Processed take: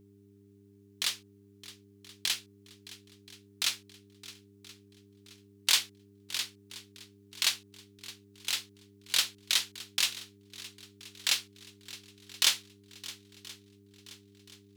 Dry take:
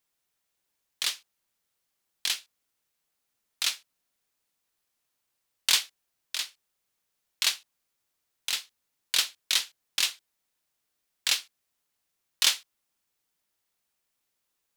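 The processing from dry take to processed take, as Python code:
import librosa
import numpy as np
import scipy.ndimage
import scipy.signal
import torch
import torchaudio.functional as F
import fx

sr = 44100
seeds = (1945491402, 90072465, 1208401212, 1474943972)

y = fx.echo_swing(x, sr, ms=1027, ratio=1.5, feedback_pct=39, wet_db=-18.0)
y = fx.dmg_buzz(y, sr, base_hz=100.0, harmonics=4, level_db=-57.0, tilt_db=-1, odd_only=False)
y = F.gain(torch.from_numpy(y), -2.0).numpy()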